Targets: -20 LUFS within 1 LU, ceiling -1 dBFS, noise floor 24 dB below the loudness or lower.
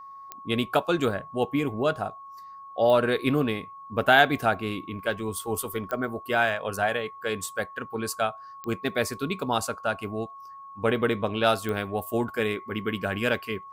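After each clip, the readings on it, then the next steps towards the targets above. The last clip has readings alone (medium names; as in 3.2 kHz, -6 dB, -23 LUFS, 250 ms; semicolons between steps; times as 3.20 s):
clicks found 5; steady tone 1.1 kHz; tone level -41 dBFS; loudness -27.0 LUFS; peak level -4.5 dBFS; loudness target -20.0 LUFS
-> de-click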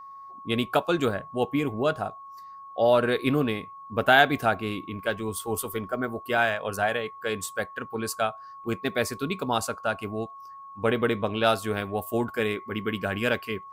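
clicks found 0; steady tone 1.1 kHz; tone level -41 dBFS
-> band-stop 1.1 kHz, Q 30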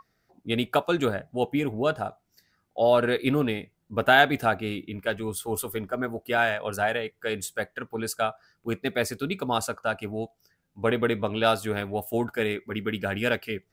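steady tone not found; loudness -27.0 LUFS; peak level -4.5 dBFS; loudness target -20.0 LUFS
-> trim +7 dB; peak limiter -1 dBFS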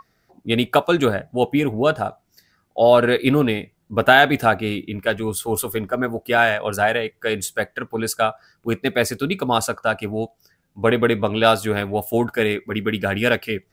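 loudness -20.0 LUFS; peak level -1.0 dBFS; noise floor -67 dBFS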